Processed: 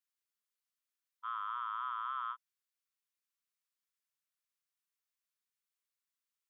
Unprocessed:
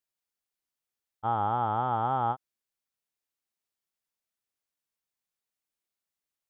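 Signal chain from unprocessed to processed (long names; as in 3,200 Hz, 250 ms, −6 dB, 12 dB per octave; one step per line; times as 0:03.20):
linear-phase brick-wall high-pass 970 Hz
level −3 dB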